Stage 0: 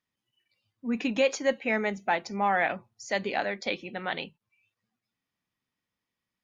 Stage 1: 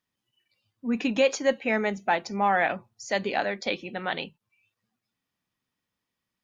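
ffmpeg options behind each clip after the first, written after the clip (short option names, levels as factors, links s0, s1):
-af "equalizer=f=2100:w=5.1:g=-3,volume=1.33"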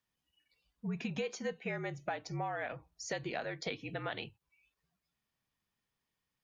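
-af "acompressor=threshold=0.0251:ratio=6,afreqshift=-54,volume=0.708"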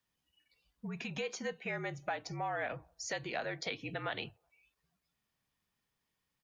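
-filter_complex "[0:a]acrossover=split=590|1000[s0][s1][s2];[s0]alimiter=level_in=5.01:limit=0.0631:level=0:latency=1:release=186,volume=0.2[s3];[s1]aecho=1:1:185|370:0.0668|0.0187[s4];[s3][s4][s2]amix=inputs=3:normalize=0,volume=1.26"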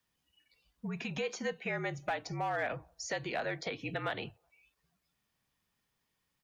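-filter_complex "[0:a]acrossover=split=480|1900[s0][s1][s2];[s1]volume=50.1,asoftclip=hard,volume=0.02[s3];[s2]alimiter=level_in=3.76:limit=0.0631:level=0:latency=1:release=106,volume=0.266[s4];[s0][s3][s4]amix=inputs=3:normalize=0,volume=1.41"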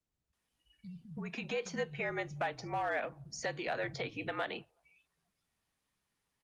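-filter_complex "[0:a]acrossover=split=160[s0][s1];[s1]adelay=330[s2];[s0][s2]amix=inputs=2:normalize=0" -ar 48000 -c:a libopus -b:a 32k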